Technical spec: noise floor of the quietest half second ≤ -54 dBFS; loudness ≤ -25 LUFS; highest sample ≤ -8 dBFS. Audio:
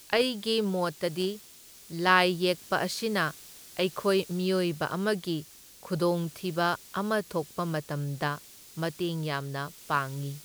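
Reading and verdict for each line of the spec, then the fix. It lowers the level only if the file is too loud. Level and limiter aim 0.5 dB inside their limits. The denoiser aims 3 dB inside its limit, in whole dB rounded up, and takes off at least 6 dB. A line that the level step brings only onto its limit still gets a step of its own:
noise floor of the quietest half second -51 dBFS: fail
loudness -29.5 LUFS: OK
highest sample -7.5 dBFS: fail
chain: denoiser 6 dB, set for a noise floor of -51 dBFS; limiter -8.5 dBFS

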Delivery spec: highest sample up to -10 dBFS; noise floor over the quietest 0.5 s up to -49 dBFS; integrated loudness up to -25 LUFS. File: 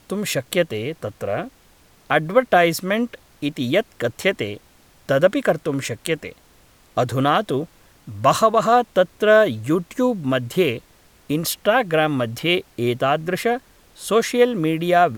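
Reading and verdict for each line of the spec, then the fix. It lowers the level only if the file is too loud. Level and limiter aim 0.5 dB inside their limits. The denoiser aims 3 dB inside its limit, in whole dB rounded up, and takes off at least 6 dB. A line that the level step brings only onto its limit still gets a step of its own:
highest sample -4.0 dBFS: fail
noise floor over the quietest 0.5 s -53 dBFS: OK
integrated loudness -20.5 LUFS: fail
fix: gain -5 dB; limiter -10.5 dBFS

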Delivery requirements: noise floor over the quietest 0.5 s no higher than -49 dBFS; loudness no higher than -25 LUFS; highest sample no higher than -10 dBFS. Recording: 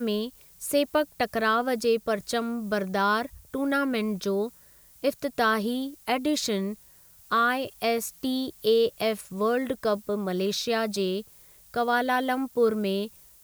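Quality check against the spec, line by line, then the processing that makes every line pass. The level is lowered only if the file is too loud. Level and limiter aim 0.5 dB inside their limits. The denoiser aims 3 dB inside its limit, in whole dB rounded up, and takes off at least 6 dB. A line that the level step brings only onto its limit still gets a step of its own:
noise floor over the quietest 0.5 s -55 dBFS: OK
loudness -27.0 LUFS: OK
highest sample -12.0 dBFS: OK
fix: none

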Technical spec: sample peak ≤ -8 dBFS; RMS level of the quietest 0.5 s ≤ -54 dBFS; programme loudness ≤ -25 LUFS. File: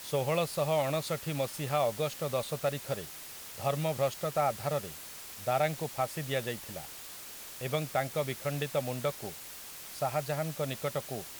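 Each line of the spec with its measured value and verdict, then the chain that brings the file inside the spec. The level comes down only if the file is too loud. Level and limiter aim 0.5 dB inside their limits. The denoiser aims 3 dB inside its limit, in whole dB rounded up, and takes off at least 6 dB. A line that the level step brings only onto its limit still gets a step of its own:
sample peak -16.0 dBFS: OK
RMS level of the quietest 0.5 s -46 dBFS: fail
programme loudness -33.5 LUFS: OK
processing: denoiser 11 dB, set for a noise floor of -46 dBFS

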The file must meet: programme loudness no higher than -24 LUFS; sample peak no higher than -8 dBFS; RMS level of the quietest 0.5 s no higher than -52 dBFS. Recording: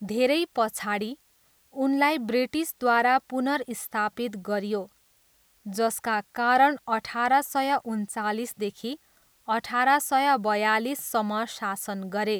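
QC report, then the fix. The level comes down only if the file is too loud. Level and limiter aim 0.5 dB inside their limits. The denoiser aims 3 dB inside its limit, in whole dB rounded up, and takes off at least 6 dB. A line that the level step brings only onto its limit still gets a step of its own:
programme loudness -26.0 LUFS: OK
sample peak -9.0 dBFS: OK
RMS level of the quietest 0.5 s -64 dBFS: OK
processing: none

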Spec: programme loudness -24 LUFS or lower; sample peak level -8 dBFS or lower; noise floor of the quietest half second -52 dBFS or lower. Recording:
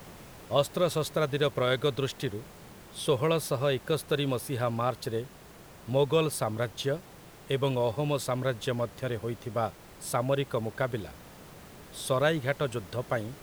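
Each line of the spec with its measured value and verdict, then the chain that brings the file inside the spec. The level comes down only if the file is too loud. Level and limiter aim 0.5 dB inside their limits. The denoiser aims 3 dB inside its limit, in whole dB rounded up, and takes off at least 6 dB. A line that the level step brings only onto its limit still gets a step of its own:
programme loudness -30.0 LUFS: OK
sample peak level -9.0 dBFS: OK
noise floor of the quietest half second -50 dBFS: fail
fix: denoiser 6 dB, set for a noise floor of -50 dBFS

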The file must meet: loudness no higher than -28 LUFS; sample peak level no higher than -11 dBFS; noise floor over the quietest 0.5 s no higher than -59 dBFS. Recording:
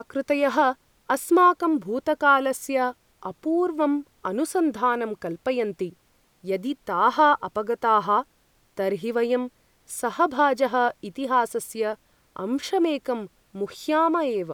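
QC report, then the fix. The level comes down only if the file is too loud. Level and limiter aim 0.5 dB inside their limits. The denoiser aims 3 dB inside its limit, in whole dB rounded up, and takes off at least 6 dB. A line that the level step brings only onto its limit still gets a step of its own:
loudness -24.0 LUFS: fail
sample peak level -7.5 dBFS: fail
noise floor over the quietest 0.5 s -63 dBFS: OK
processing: gain -4.5 dB

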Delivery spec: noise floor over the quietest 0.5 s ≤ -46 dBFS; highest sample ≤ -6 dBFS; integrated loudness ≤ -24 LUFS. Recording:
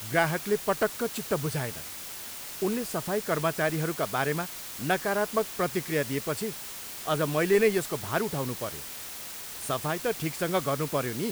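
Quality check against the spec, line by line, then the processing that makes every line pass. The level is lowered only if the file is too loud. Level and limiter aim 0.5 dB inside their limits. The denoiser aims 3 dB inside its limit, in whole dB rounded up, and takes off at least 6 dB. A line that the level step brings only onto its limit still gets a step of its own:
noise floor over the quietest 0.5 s -40 dBFS: fail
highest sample -8.5 dBFS: OK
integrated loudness -29.5 LUFS: OK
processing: denoiser 9 dB, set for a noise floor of -40 dBFS

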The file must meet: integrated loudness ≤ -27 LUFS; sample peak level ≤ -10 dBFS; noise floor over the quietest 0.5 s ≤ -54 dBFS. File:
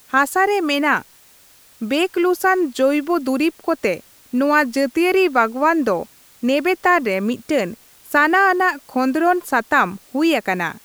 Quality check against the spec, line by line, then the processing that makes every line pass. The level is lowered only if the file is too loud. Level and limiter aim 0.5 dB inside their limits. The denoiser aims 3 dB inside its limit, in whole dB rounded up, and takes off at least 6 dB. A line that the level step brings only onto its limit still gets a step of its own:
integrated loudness -18.0 LUFS: fail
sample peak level -2.5 dBFS: fail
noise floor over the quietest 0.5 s -50 dBFS: fail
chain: gain -9.5 dB

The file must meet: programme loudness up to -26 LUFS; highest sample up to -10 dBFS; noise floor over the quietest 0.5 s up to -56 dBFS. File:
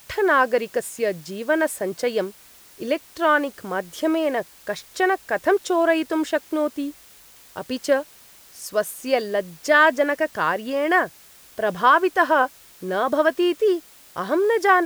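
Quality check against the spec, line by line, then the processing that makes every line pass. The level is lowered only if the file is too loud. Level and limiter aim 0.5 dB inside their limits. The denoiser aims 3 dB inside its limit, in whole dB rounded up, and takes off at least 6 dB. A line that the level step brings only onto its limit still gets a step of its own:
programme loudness -22.0 LUFS: fail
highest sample -5.5 dBFS: fail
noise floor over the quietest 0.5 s -49 dBFS: fail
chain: denoiser 6 dB, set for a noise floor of -49 dBFS; gain -4.5 dB; limiter -10.5 dBFS

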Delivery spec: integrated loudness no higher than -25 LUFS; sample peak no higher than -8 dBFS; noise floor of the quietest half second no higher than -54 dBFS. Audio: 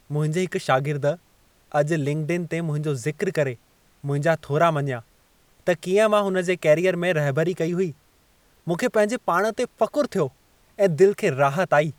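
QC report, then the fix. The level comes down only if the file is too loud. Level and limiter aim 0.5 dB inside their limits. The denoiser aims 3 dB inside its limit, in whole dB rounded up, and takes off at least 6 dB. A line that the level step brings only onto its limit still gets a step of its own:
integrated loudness -23.0 LUFS: fail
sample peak -6.0 dBFS: fail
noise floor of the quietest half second -60 dBFS: OK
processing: gain -2.5 dB

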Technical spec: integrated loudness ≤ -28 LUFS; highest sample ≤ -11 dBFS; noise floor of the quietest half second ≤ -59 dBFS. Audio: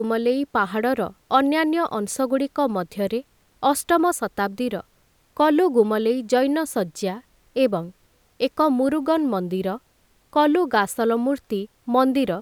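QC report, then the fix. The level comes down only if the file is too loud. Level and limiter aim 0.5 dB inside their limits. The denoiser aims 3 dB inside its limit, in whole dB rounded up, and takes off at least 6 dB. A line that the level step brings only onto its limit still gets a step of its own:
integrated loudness -22.0 LUFS: fail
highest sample -4.5 dBFS: fail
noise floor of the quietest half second -61 dBFS: OK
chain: gain -6.5 dB; limiter -11.5 dBFS

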